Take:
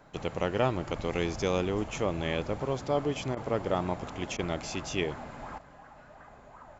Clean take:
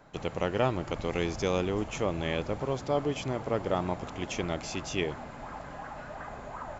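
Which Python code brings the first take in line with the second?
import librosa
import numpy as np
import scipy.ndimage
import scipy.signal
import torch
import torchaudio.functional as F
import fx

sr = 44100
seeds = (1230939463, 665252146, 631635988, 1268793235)

y = fx.fix_interpolate(x, sr, at_s=(3.35, 4.37), length_ms=17.0)
y = fx.fix_level(y, sr, at_s=5.58, step_db=10.5)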